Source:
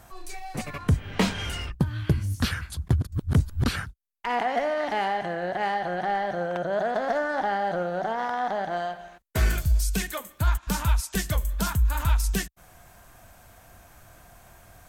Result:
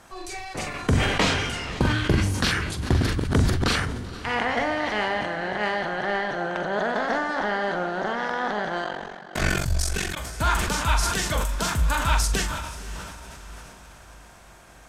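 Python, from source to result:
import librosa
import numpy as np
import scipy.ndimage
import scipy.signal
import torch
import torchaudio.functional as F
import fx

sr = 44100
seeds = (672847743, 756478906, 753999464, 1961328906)

y = fx.spec_clip(x, sr, under_db=13)
y = scipy.signal.sosfilt(scipy.signal.butter(2, 8100.0, 'lowpass', fs=sr, output='sos'), y)
y = fx.doubler(y, sr, ms=43.0, db=-9)
y = fx.echo_diffused(y, sr, ms=527, feedback_pct=51, wet_db=-13.5)
y = fx.ring_mod(y, sr, carrier_hz=23.0, at=(8.82, 10.15), fade=0.02)
y = fx.sustainer(y, sr, db_per_s=35.0)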